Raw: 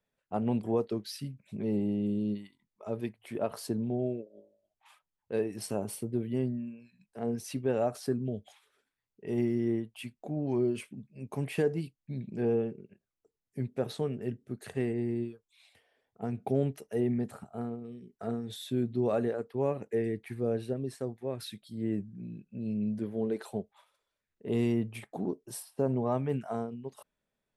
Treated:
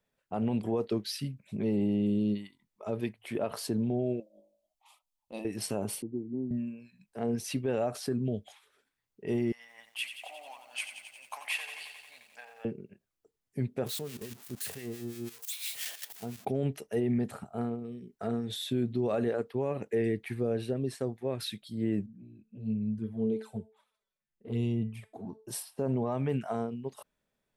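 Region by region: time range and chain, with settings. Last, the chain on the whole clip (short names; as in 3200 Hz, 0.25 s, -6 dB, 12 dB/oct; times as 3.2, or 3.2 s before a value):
4.2–5.45 bell 210 Hz -7.5 dB 2.7 oct + fixed phaser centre 430 Hz, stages 6
6.02–6.51 vocal tract filter u + three-band squash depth 40%
9.52–12.65 negative-ratio compressor -33 dBFS + inverse Chebyshev high-pass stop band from 390 Hz + lo-fi delay 89 ms, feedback 80%, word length 11-bit, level -9 dB
13.86–16.45 switching spikes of -27 dBFS + level quantiser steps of 13 dB + harmonic tremolo 5.8 Hz, crossover 1100 Hz
22.06–25.47 bell 100 Hz +10.5 dB 1.2 oct + resonator 220 Hz, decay 0.3 s, mix 70% + envelope flanger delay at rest 5.8 ms, full sweep at -29.5 dBFS
whole clip: dynamic EQ 2900 Hz, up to +4 dB, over -57 dBFS, Q 0.98; limiter -24 dBFS; gain +3 dB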